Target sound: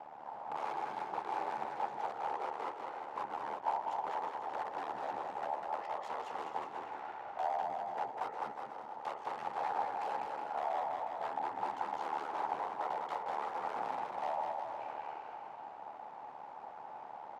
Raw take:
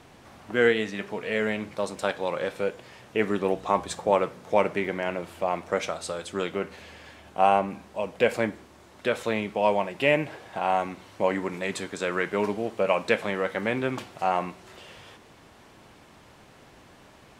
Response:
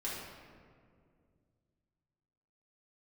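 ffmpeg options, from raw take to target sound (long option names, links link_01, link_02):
-filter_complex "[0:a]acompressor=threshold=-34dB:ratio=4,aeval=exprs='(mod(39.8*val(0)+1,2)-1)/39.8':channel_layout=same,aeval=exprs='val(0)*sin(2*PI*44*n/s)':channel_layout=same,asoftclip=type=hard:threshold=-37.5dB,bandpass=frequency=1000:width_type=q:width=6.8:csg=0,asetrate=37084,aresample=44100,atempo=1.18921,asplit=2[link_01][link_02];[link_02]aecho=0:1:200|360|488|590.4|672.3:0.631|0.398|0.251|0.158|0.1[link_03];[link_01][link_03]amix=inputs=2:normalize=0,volume=17dB"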